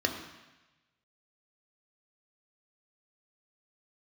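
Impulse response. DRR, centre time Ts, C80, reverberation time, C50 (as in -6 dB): 3.0 dB, 26 ms, 9.0 dB, 1.1 s, 7.5 dB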